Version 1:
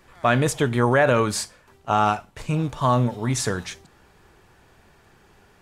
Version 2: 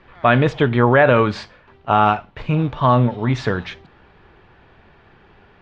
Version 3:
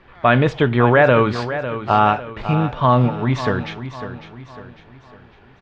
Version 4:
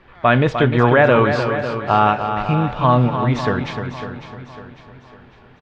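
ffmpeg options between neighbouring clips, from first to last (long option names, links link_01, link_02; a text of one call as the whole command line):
ffmpeg -i in.wav -af "lowpass=frequency=3600:width=0.5412,lowpass=frequency=3600:width=1.3066,volume=5dB" out.wav
ffmpeg -i in.wav -af "aecho=1:1:551|1102|1653|2204:0.266|0.112|0.0469|0.0197" out.wav
ffmpeg -i in.wav -af "aecho=1:1:302|604|906:0.398|0.0995|0.0249" out.wav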